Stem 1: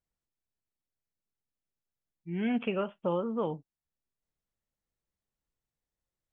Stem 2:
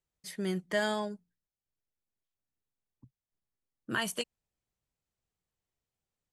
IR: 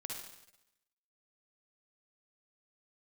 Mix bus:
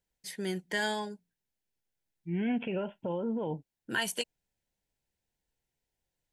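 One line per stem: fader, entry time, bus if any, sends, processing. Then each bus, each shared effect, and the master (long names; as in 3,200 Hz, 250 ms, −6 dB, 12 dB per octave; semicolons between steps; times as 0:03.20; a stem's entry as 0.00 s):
+2.0 dB, 0.00 s, no send, brickwall limiter −27 dBFS, peak gain reduction 8.5 dB; bass and treble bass +1 dB, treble −5 dB
+2.0 dB, 0.00 s, no send, low-shelf EQ 210 Hz −9 dB; notch filter 620 Hz, Q 12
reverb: not used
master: Butterworth band-reject 1,200 Hz, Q 3.4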